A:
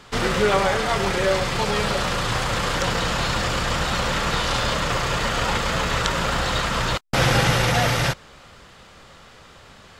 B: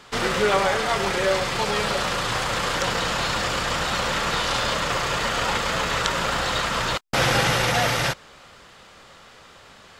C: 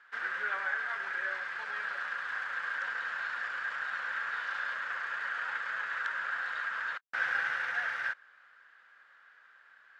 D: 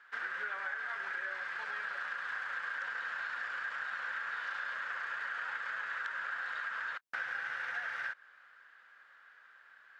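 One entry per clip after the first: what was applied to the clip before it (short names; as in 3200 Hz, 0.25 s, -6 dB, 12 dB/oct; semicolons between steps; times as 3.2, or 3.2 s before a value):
low shelf 200 Hz -8 dB
band-pass 1600 Hz, Q 8.8
compressor, threshold -35 dBFS, peak gain reduction 9 dB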